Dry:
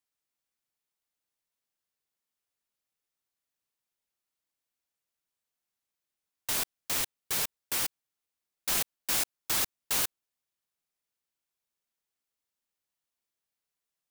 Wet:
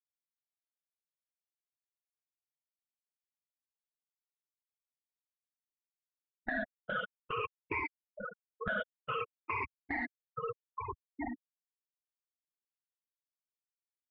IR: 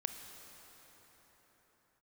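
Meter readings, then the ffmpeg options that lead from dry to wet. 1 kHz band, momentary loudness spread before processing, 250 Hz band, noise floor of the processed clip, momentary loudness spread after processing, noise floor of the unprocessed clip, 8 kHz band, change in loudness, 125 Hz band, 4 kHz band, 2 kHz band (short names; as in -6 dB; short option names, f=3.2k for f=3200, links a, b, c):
+4.0 dB, 4 LU, +5.0 dB, under -85 dBFS, 7 LU, under -85 dBFS, under -40 dB, -10.0 dB, +0.5 dB, -17.0 dB, +2.0 dB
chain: -filter_complex "[0:a]afftfilt=real='re*pow(10,24/40*sin(2*PI*(0.88*log(max(b,1)*sr/1024/100)/log(2)-(-0.54)*(pts-256)/sr)))':imag='im*pow(10,24/40*sin(2*PI*(0.88*log(max(b,1)*sr/1024/100)/log(2)-(-0.54)*(pts-256)/sr)))':win_size=1024:overlap=0.75,acompressor=mode=upward:threshold=-30dB:ratio=2.5,bandreject=f=1k:w=12,aecho=1:1:4.9:0.48,asplit=2[a][b];[b]adelay=1283,volume=-16dB,highshelf=f=4k:g=-28.9[c];[a][c]amix=inputs=2:normalize=0,acompressor=threshold=-37dB:ratio=4,afftfilt=real='re*gte(hypot(re,im),0.0126)':imag='im*gte(hypot(re,im),0.0126)':win_size=1024:overlap=0.75,equalizer=f=1.7k:w=1.6:g=4.5,asoftclip=type=tanh:threshold=-28.5dB,aemphasis=mode=reproduction:type=75kf,alimiter=level_in=15.5dB:limit=-24dB:level=0:latency=1:release=42,volume=-15.5dB,highpass=f=250:t=q:w=0.5412,highpass=f=250:t=q:w=1.307,lowpass=f=2.6k:t=q:w=0.5176,lowpass=f=2.6k:t=q:w=0.7071,lowpass=f=2.6k:t=q:w=1.932,afreqshift=-150,volume=16dB"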